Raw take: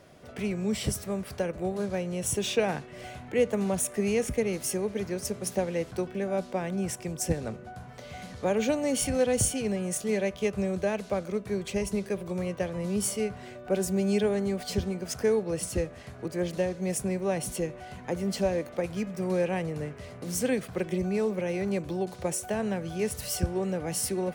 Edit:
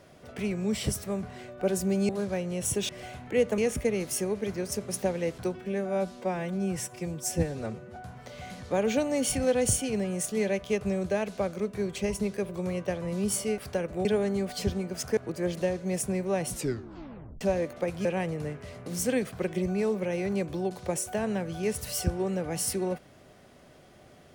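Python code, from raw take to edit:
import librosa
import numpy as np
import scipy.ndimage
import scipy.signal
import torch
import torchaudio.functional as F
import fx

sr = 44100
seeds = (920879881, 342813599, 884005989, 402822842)

y = fx.edit(x, sr, fx.swap(start_s=1.23, length_s=0.47, other_s=13.3, other_length_s=0.86),
    fx.cut(start_s=2.5, length_s=0.4),
    fx.cut(start_s=3.59, length_s=0.52),
    fx.stretch_span(start_s=6.06, length_s=1.62, factor=1.5),
    fx.cut(start_s=15.28, length_s=0.85),
    fx.tape_stop(start_s=17.46, length_s=0.91),
    fx.cut(start_s=19.01, length_s=0.4), tone=tone)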